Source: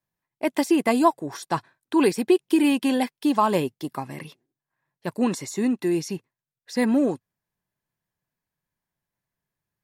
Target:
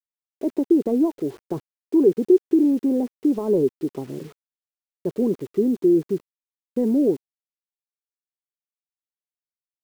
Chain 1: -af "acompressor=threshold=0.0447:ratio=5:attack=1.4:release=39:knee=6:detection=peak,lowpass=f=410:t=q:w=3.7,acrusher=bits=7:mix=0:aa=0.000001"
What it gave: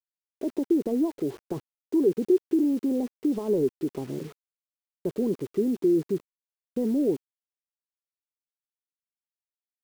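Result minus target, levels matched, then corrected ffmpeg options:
compression: peak gain reduction +6 dB
-af "acompressor=threshold=0.106:ratio=5:attack=1.4:release=39:knee=6:detection=peak,lowpass=f=410:t=q:w=3.7,acrusher=bits=7:mix=0:aa=0.000001"

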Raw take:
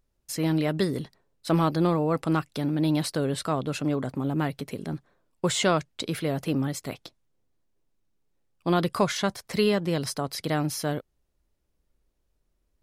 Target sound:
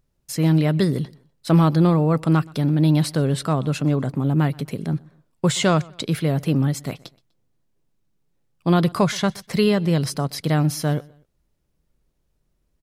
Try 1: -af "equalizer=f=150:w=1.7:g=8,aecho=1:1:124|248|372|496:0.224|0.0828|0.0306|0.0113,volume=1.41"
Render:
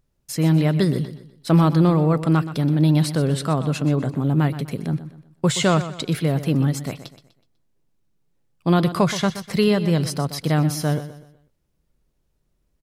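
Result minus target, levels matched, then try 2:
echo-to-direct +11.5 dB
-af "equalizer=f=150:w=1.7:g=8,aecho=1:1:124|248:0.0596|0.022,volume=1.41"

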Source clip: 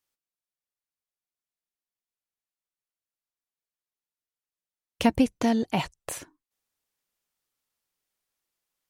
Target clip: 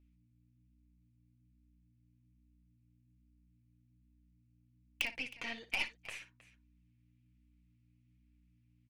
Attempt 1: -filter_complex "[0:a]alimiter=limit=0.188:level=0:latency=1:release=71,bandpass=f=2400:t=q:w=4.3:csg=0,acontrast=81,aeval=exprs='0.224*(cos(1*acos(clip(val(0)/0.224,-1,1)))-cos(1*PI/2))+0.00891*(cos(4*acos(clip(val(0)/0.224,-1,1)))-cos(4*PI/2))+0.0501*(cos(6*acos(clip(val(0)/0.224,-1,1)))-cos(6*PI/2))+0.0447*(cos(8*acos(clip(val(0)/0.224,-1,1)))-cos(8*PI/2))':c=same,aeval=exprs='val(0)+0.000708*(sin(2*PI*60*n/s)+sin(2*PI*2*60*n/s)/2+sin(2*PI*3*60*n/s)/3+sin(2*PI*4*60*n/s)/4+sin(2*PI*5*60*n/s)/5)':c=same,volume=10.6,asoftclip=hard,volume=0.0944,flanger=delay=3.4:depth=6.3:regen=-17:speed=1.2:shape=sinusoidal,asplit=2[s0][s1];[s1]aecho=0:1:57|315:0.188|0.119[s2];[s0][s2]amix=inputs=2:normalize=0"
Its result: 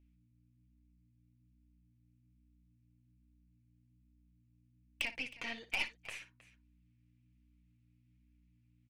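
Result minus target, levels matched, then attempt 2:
overload inside the chain: distortion +14 dB
-filter_complex "[0:a]alimiter=limit=0.188:level=0:latency=1:release=71,bandpass=f=2400:t=q:w=4.3:csg=0,acontrast=81,aeval=exprs='0.224*(cos(1*acos(clip(val(0)/0.224,-1,1)))-cos(1*PI/2))+0.00891*(cos(4*acos(clip(val(0)/0.224,-1,1)))-cos(4*PI/2))+0.0501*(cos(6*acos(clip(val(0)/0.224,-1,1)))-cos(6*PI/2))+0.0447*(cos(8*acos(clip(val(0)/0.224,-1,1)))-cos(8*PI/2))':c=same,aeval=exprs='val(0)+0.000708*(sin(2*PI*60*n/s)+sin(2*PI*2*60*n/s)/2+sin(2*PI*3*60*n/s)/3+sin(2*PI*4*60*n/s)/4+sin(2*PI*5*60*n/s)/5)':c=same,volume=5.01,asoftclip=hard,volume=0.2,flanger=delay=3.4:depth=6.3:regen=-17:speed=1.2:shape=sinusoidal,asplit=2[s0][s1];[s1]aecho=0:1:57|315:0.188|0.119[s2];[s0][s2]amix=inputs=2:normalize=0"

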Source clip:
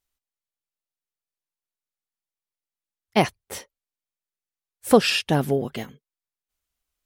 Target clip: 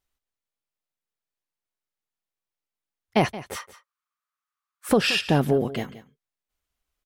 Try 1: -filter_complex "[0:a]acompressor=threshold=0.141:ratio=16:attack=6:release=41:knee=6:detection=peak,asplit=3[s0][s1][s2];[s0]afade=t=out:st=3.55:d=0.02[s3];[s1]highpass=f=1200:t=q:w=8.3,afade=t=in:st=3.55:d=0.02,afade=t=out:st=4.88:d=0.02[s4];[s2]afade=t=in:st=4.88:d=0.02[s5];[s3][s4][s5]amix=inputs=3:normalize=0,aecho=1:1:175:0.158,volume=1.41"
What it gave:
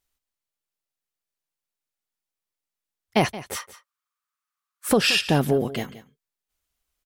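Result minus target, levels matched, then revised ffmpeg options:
8 kHz band +5.0 dB
-filter_complex "[0:a]acompressor=threshold=0.141:ratio=16:attack=6:release=41:knee=6:detection=peak,highshelf=f=3900:g=-7,asplit=3[s0][s1][s2];[s0]afade=t=out:st=3.55:d=0.02[s3];[s1]highpass=f=1200:t=q:w=8.3,afade=t=in:st=3.55:d=0.02,afade=t=out:st=4.88:d=0.02[s4];[s2]afade=t=in:st=4.88:d=0.02[s5];[s3][s4][s5]amix=inputs=3:normalize=0,aecho=1:1:175:0.158,volume=1.41"

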